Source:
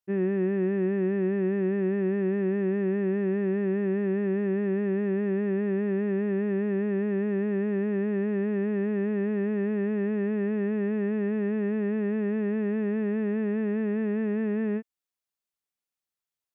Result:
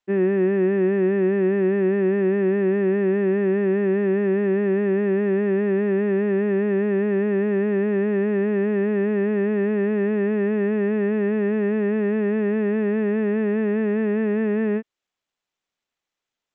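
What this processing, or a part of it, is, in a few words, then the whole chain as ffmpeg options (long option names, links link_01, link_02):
Bluetooth headset: -af "highpass=220,aresample=8000,aresample=44100,volume=8dB" -ar 16000 -c:a sbc -b:a 64k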